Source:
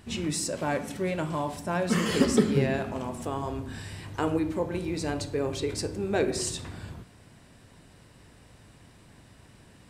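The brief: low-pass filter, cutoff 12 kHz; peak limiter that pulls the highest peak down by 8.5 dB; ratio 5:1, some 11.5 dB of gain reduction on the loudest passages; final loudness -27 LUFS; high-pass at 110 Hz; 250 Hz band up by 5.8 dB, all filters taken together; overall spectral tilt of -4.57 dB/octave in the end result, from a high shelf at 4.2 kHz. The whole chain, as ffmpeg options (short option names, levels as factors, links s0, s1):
-af "highpass=110,lowpass=12000,equalizer=f=250:t=o:g=7.5,highshelf=f=4200:g=6,acompressor=threshold=0.0631:ratio=5,volume=1.68,alimiter=limit=0.141:level=0:latency=1"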